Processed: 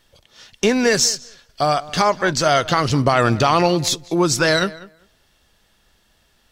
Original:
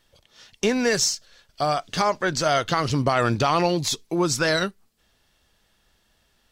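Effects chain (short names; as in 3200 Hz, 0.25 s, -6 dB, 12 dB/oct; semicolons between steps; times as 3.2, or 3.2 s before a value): darkening echo 0.196 s, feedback 15%, low-pass 3500 Hz, level -19 dB; gain +5 dB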